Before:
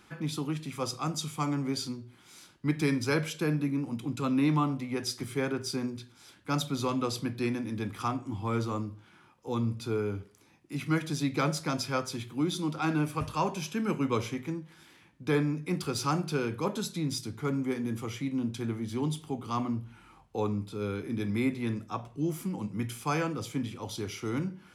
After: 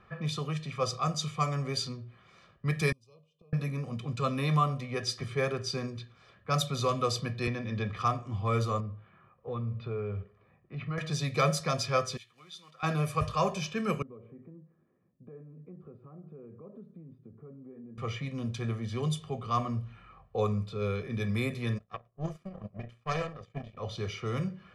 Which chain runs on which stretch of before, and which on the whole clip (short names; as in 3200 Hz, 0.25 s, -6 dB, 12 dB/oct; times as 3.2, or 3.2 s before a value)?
2.92–3.53 Chebyshev band-stop 1200–2500 Hz, order 5 + high shelf 5900 Hz +8 dB + flipped gate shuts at -27 dBFS, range -32 dB
7.47–7.97 LPF 4500 Hz + three-band squash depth 70%
8.8–10.98 air absorption 320 m + compressor 2.5:1, threshold -33 dBFS
12.17–12.83 block floating point 5-bit + pre-emphasis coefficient 0.97
14.02–17.98 compressor, threshold -36 dBFS + band-pass 280 Hz, Q 2.3 + air absorption 330 m
21.78–23.77 bell 180 Hz +3.5 dB 2.6 oct + notches 60/120/180/240/300/360/420/480/540 Hz + power-law curve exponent 2
whole clip: low-pass opened by the level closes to 1700 Hz, open at -24.5 dBFS; comb 1.7 ms, depth 88%